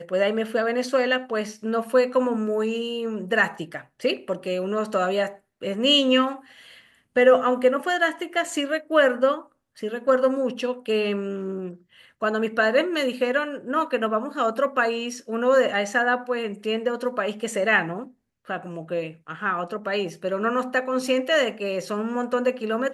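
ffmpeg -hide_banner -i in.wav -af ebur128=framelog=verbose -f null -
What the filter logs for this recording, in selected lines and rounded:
Integrated loudness:
  I:         -23.6 LUFS
  Threshold: -34.0 LUFS
Loudness range:
  LRA:         4.9 LU
  Threshold: -44.0 LUFS
  LRA low:   -26.5 LUFS
  LRA high:  -21.6 LUFS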